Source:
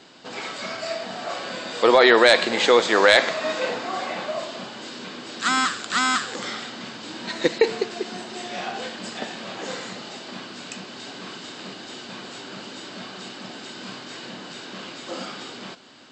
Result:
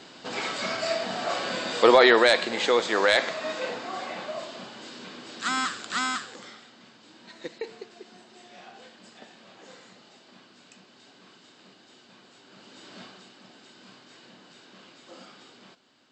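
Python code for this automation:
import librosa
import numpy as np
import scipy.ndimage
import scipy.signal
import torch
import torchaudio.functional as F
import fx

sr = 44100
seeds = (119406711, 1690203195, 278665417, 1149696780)

y = fx.gain(x, sr, db=fx.line((1.72, 1.5), (2.42, -6.0), (6.03, -6.0), (6.62, -17.0), (12.41, -17.0), (13.01, -7.5), (13.27, -14.5)))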